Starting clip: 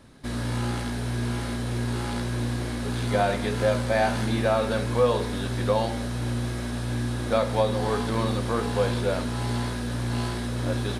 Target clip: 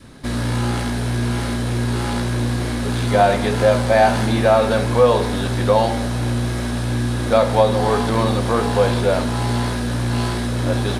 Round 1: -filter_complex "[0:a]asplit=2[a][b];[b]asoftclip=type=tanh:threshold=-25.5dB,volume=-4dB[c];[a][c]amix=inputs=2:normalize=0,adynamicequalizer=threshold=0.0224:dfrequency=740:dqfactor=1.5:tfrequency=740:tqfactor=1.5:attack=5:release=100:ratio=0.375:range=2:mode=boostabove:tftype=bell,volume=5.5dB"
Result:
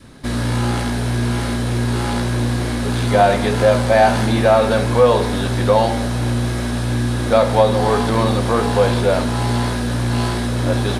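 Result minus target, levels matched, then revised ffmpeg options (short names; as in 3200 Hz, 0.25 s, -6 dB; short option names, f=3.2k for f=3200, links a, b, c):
soft clip: distortion -5 dB
-filter_complex "[0:a]asplit=2[a][b];[b]asoftclip=type=tanh:threshold=-35dB,volume=-4dB[c];[a][c]amix=inputs=2:normalize=0,adynamicequalizer=threshold=0.0224:dfrequency=740:dqfactor=1.5:tfrequency=740:tqfactor=1.5:attack=5:release=100:ratio=0.375:range=2:mode=boostabove:tftype=bell,volume=5.5dB"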